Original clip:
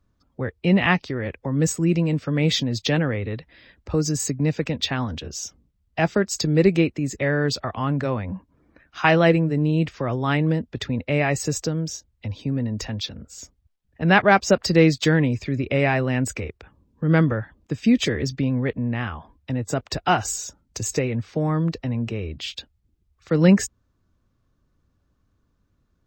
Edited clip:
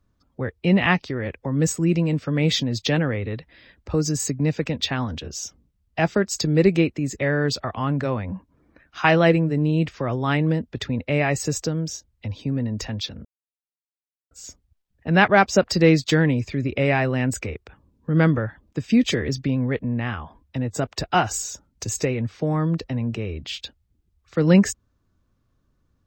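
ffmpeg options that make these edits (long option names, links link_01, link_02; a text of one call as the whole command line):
ffmpeg -i in.wav -filter_complex "[0:a]asplit=2[link_01][link_02];[link_01]atrim=end=13.25,asetpts=PTS-STARTPTS,afade=type=out:start_time=13.246:duration=0.004:curve=hsin,apad=pad_dur=1.06[link_03];[link_02]atrim=start=13.25,asetpts=PTS-STARTPTS,afade=type=in:duration=0.004:curve=hsin[link_04];[link_03][link_04]concat=n=2:v=0:a=1" out.wav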